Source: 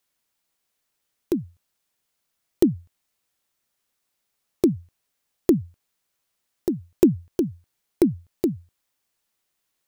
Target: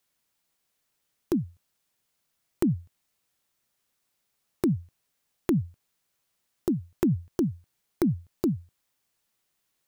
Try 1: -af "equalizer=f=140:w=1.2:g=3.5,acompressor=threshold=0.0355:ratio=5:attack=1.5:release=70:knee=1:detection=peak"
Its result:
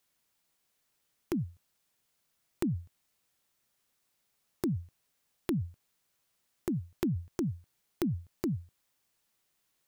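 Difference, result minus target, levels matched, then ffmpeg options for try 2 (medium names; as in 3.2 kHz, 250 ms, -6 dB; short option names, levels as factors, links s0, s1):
compression: peak gain reduction +7 dB
-af "equalizer=f=140:w=1.2:g=3.5,acompressor=threshold=0.1:ratio=5:attack=1.5:release=70:knee=1:detection=peak"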